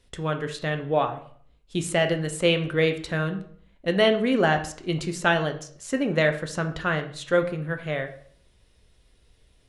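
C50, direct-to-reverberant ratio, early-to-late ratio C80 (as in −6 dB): 11.5 dB, 6.0 dB, 15.0 dB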